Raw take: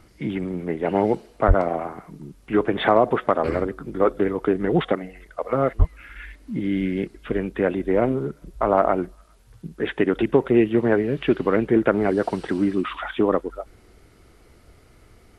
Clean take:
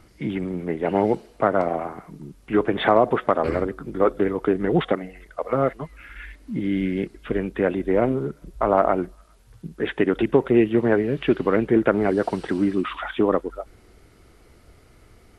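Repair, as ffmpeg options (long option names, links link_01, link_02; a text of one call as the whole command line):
ffmpeg -i in.wav -filter_complex "[0:a]asplit=3[link_01][link_02][link_03];[link_01]afade=type=out:start_time=1.47:duration=0.02[link_04];[link_02]highpass=frequency=140:width=0.5412,highpass=frequency=140:width=1.3066,afade=type=in:start_time=1.47:duration=0.02,afade=type=out:start_time=1.59:duration=0.02[link_05];[link_03]afade=type=in:start_time=1.59:duration=0.02[link_06];[link_04][link_05][link_06]amix=inputs=3:normalize=0,asplit=3[link_07][link_08][link_09];[link_07]afade=type=out:start_time=5.78:duration=0.02[link_10];[link_08]highpass=frequency=140:width=0.5412,highpass=frequency=140:width=1.3066,afade=type=in:start_time=5.78:duration=0.02,afade=type=out:start_time=5.9:duration=0.02[link_11];[link_09]afade=type=in:start_time=5.9:duration=0.02[link_12];[link_10][link_11][link_12]amix=inputs=3:normalize=0" out.wav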